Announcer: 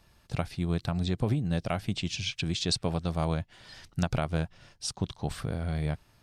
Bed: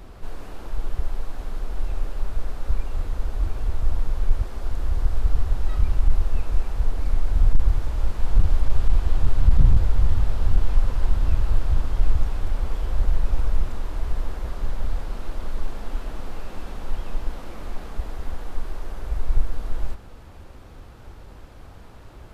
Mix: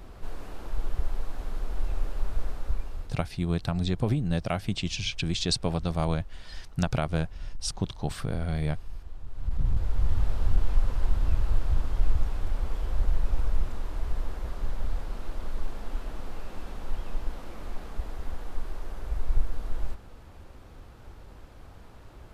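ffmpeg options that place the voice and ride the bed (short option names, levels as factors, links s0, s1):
-filter_complex "[0:a]adelay=2800,volume=1.19[s0];[1:a]volume=4.73,afade=t=out:st=2.46:d=0.8:silence=0.125893,afade=t=in:st=9.29:d=0.95:silence=0.149624[s1];[s0][s1]amix=inputs=2:normalize=0"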